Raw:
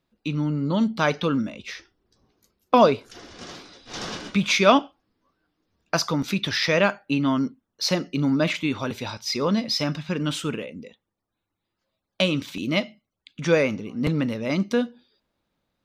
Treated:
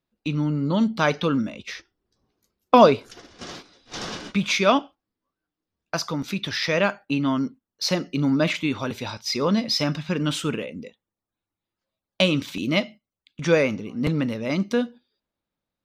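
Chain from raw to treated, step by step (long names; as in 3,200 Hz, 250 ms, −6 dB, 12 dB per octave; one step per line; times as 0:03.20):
speech leveller within 4 dB 2 s
noise gate −38 dBFS, range −9 dB
level −1 dB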